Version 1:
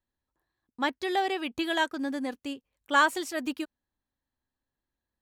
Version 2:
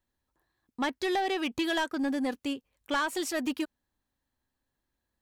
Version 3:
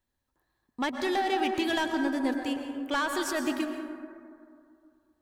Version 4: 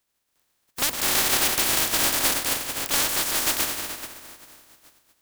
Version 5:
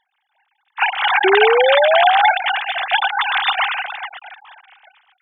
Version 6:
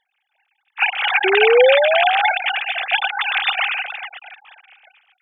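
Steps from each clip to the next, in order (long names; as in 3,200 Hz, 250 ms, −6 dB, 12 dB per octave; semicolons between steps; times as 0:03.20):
downward compressor 6 to 1, threshold −26 dBFS, peak gain reduction 9 dB; soft clipping −27.5 dBFS, distortion −14 dB; level +4.5 dB
dense smooth reverb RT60 2.4 s, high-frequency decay 0.3×, pre-delay 100 ms, DRR 4.5 dB
compressing power law on the bin magnitudes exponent 0.12; level +6 dB
three sine waves on the formant tracks; sound drawn into the spectrogram rise, 0:01.24–0:02.31, 370–880 Hz −20 dBFS; level +6 dB
thirty-one-band graphic EQ 315 Hz −6 dB, 500 Hz +8 dB, 1,000 Hz −8 dB, 2,500 Hz +9 dB; level −3.5 dB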